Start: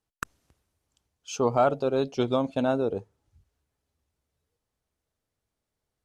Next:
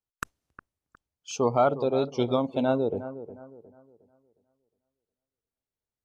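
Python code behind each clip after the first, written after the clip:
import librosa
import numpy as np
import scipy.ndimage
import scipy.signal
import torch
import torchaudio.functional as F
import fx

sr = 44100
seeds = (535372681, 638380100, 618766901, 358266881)

y = fx.noise_reduce_blind(x, sr, reduce_db=12)
y = fx.echo_bbd(y, sr, ms=360, stages=4096, feedback_pct=34, wet_db=-13.5)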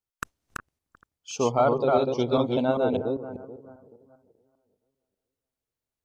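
y = fx.reverse_delay(x, sr, ms=198, wet_db=-2)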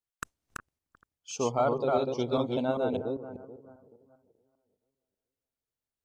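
y = fx.dynamic_eq(x, sr, hz=8200.0, q=1.2, threshold_db=-53.0, ratio=4.0, max_db=5)
y = y * 10.0 ** (-5.0 / 20.0)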